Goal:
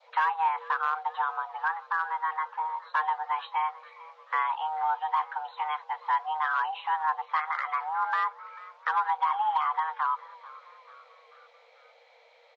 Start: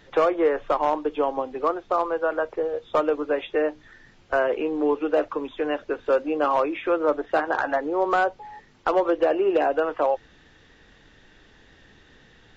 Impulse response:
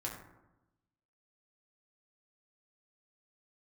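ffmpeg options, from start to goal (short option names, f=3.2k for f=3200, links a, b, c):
-filter_complex "[0:a]adynamicequalizer=threshold=0.01:dfrequency=1600:dqfactor=1.5:tfrequency=1600:tqfactor=1.5:attack=5:release=100:ratio=0.375:range=2.5:mode=cutabove:tftype=bell,lowpass=4.1k,asplit=2[a][b];[b]asplit=4[c][d][e][f];[c]adelay=440,afreqshift=61,volume=-20.5dB[g];[d]adelay=880,afreqshift=122,volume=-25.5dB[h];[e]adelay=1320,afreqshift=183,volume=-30.6dB[i];[f]adelay=1760,afreqshift=244,volume=-35.6dB[j];[g][h][i][j]amix=inputs=4:normalize=0[k];[a][k]amix=inputs=2:normalize=0,afreqshift=460,volume=-5.5dB"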